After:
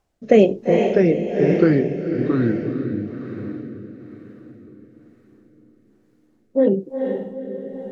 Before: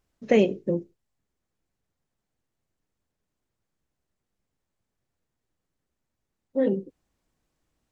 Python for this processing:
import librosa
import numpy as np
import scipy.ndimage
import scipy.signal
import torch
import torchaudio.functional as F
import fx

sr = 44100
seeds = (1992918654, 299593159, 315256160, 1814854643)

p1 = fx.peak_eq(x, sr, hz=770.0, db=9.5, octaves=0.93)
p2 = fx.echo_pitch(p1, sr, ms=589, semitones=-3, count=3, db_per_echo=-3.0)
p3 = p2 + fx.echo_diffused(p2, sr, ms=463, feedback_pct=53, wet_db=-5.5, dry=0)
p4 = fx.rotary(p3, sr, hz=1.1)
y = p4 * librosa.db_to_amplitude(6.0)